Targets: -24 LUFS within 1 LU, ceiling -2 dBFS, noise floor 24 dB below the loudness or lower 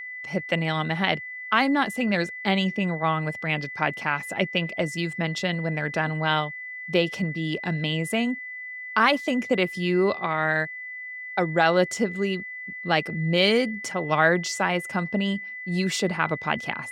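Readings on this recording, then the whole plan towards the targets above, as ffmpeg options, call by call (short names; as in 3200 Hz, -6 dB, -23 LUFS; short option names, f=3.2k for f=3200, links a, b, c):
steady tone 2000 Hz; tone level -34 dBFS; loudness -25.0 LUFS; peak -5.0 dBFS; loudness target -24.0 LUFS
-> -af "bandreject=f=2k:w=30"
-af "volume=1dB"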